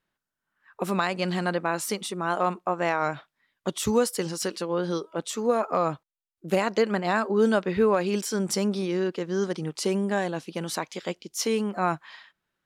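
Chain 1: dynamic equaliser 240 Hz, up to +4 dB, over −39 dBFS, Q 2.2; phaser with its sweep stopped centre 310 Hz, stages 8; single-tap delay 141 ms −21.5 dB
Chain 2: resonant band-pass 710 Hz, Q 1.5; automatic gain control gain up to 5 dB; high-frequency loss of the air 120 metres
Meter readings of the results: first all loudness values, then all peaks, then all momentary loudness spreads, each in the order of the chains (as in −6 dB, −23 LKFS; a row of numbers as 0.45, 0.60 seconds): −31.0, −27.5 LKFS; −14.0, −9.5 dBFS; 6, 11 LU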